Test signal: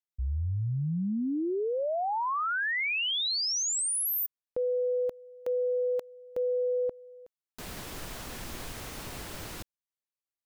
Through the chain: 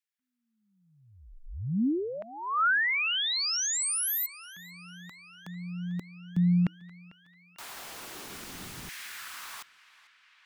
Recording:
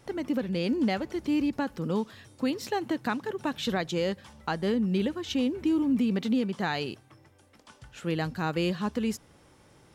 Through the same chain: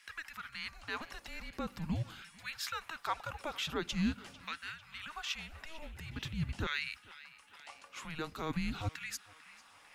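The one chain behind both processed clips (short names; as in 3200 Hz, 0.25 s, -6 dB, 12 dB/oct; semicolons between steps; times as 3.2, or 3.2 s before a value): bell 870 Hz -9 dB 0.82 oct; limiter -26.5 dBFS; LFO high-pass saw down 0.45 Hz 420–2300 Hz; narrowing echo 0.447 s, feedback 81%, band-pass 2600 Hz, level -17 dB; frequency shift -320 Hz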